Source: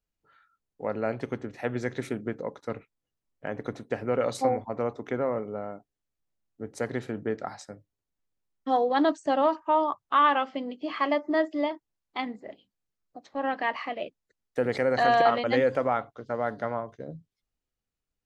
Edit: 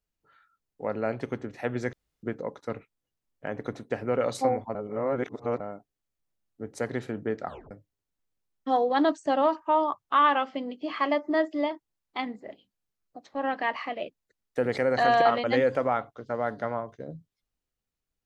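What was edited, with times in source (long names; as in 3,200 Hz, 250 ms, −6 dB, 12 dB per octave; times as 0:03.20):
0:01.93–0:02.23: fill with room tone
0:04.75–0:05.60: reverse
0:07.46: tape stop 0.25 s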